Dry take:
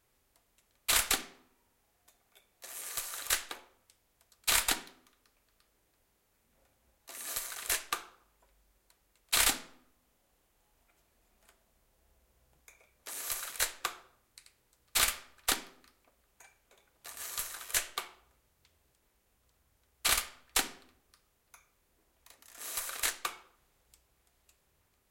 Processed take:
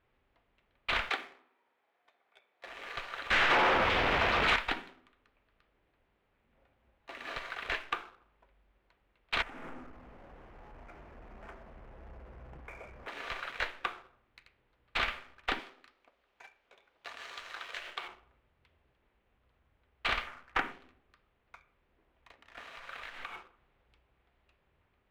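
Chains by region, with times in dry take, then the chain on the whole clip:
1.09–2.66 HPF 430 Hz + notch 2800 Hz, Q 16
3.31–4.56 zero-crossing step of -34 dBFS + overdrive pedal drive 29 dB, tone 3500 Hz, clips at -11.5 dBFS
9.42–13.08 LPF 1700 Hz + compressor 8:1, threshold -53 dBFS + power-law curve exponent 0.5
15.59–18.08 tone controls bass -12 dB, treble +11 dB + notches 50/100/150 Hz + compressor 3:1, threshold -33 dBFS
20.27–20.72 median filter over 9 samples + bell 1400 Hz +7 dB 1.4 oct
22.57–23.36 G.711 law mismatch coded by mu + bell 350 Hz -9 dB 0.71 oct + compressor, threshold -44 dBFS
whole clip: LPF 3000 Hz 24 dB/oct; compressor 1.5:1, threshold -44 dBFS; sample leveller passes 1; gain +3.5 dB

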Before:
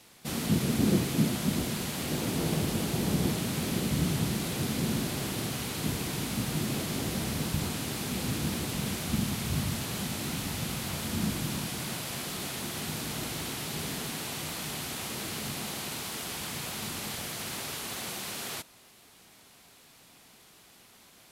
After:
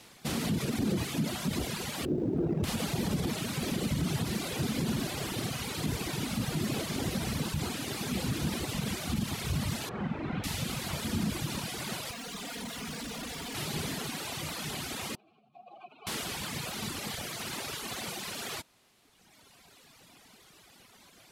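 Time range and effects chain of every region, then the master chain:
2.05–2.64 median filter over 41 samples + bell 350 Hz +8.5 dB 0.61 oct
9.89–10.44 LPF 1900 Hz + flutter echo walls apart 7.7 m, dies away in 0.46 s
12.11–13.55 comb 4.2 ms, depth 89% + hard clip -36.5 dBFS + Doppler distortion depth 0.27 ms
15.15–16.07 spectral contrast raised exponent 2.4 + vowel filter a
whole clip: reverb removal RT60 2 s; limiter -25.5 dBFS; high shelf 10000 Hz -7.5 dB; gain +4 dB

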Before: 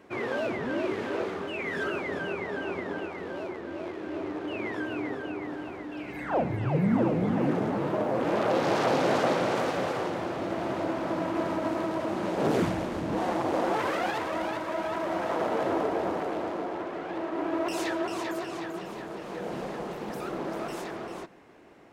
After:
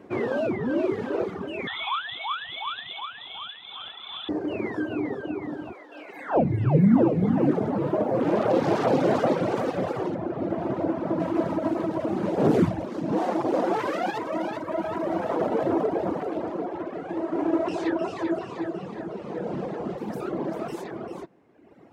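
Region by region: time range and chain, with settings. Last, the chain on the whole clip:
1.67–4.29 inverted band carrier 3800 Hz + band shelf 980 Hz +13 dB 1.2 oct
5.73–6.36 HPF 520 Hz + doubler 19 ms -8.5 dB
10.15–11.2 HPF 46 Hz + high shelf 3000 Hz -8 dB
12.87–14.63 HPF 150 Hz + bell 5500 Hz +3.5 dB 1.3 oct
16.99–19.98 CVSD 64 kbps + air absorption 89 m + echo 0.305 s -6 dB
whole clip: reverb removal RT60 1.4 s; HPF 84 Hz; tilt shelf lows +6 dB, about 830 Hz; gain +3.5 dB

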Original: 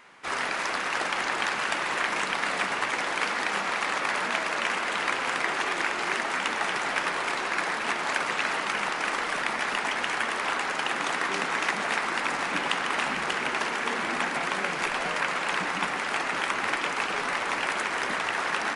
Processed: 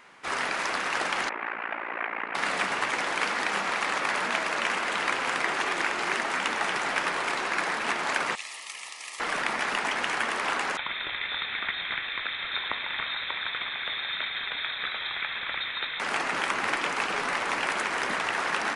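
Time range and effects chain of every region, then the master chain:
1.29–2.35 Chebyshev band-pass 240–2300 Hz, order 3 + AM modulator 57 Hz, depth 80%
8.35–9.2 Butterworth band-stop 1500 Hz, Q 3.6 + differentiator
10.77–16 tilt -1.5 dB/oct + fixed phaser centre 2400 Hz, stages 4 + inverted band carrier 3900 Hz
whole clip: dry

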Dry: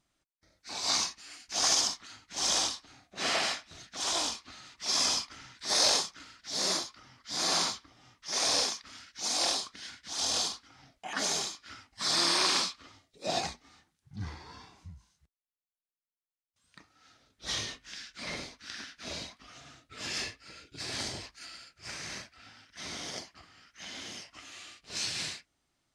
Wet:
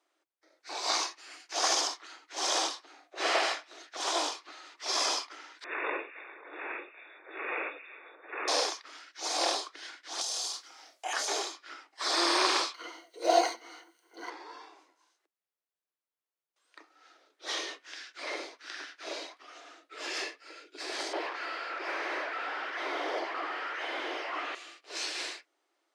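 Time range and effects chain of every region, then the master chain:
5.64–8.48 inverse Chebyshev band-stop 200–660 Hz + delay with a stepping band-pass 0.134 s, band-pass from 610 Hz, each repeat 0.7 oct, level -9.5 dB + inverted band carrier 3600 Hz
10.21–11.28 tone controls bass -15 dB, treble +15 dB + compressor 10:1, threshold -28 dBFS + doubler 30 ms -8 dB
12.74–14.3 G.711 law mismatch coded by mu + ripple EQ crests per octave 1.9, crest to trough 13 dB
21.13–24.55 zero-crossing step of -38 dBFS + air absorption 190 m + overdrive pedal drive 19 dB, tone 1400 Hz, clips at -25 dBFS
whole clip: steep high-pass 310 Hz 72 dB/oct; high shelf 2900 Hz -11 dB; gain +5.5 dB

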